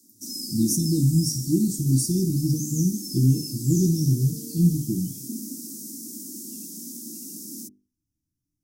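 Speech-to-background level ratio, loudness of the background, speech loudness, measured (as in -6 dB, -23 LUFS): 10.0 dB, -33.5 LUFS, -23.5 LUFS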